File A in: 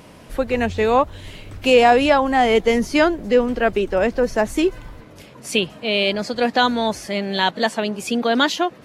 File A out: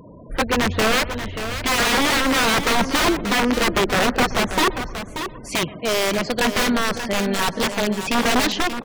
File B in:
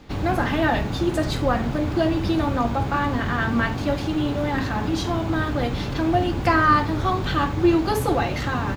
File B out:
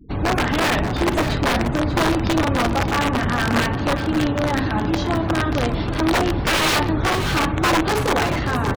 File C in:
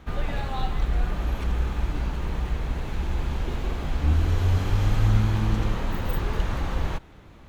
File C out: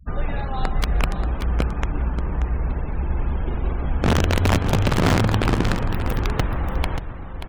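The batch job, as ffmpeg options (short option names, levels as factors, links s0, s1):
-filter_complex "[0:a]aeval=exprs='(mod(5.31*val(0)+1,2)-1)/5.31':c=same,asplit=2[s0][s1];[s1]adelay=124,lowpass=f=2200:p=1,volume=0.141,asplit=2[s2][s3];[s3]adelay=124,lowpass=f=2200:p=1,volume=0.49,asplit=2[s4][s5];[s5]adelay=124,lowpass=f=2200:p=1,volume=0.49,asplit=2[s6][s7];[s7]adelay=124,lowpass=f=2200:p=1,volume=0.49[s8];[s2][s4][s6][s8]amix=inputs=4:normalize=0[s9];[s0][s9]amix=inputs=2:normalize=0,afftfilt=real='re*gte(hypot(re,im),0.0141)':imag='im*gte(hypot(re,im),0.0141)':win_size=1024:overlap=0.75,lowpass=f=3400:p=1,asplit=2[s10][s11];[s11]aecho=0:1:583:0.335[s12];[s10][s12]amix=inputs=2:normalize=0,volume=1.41"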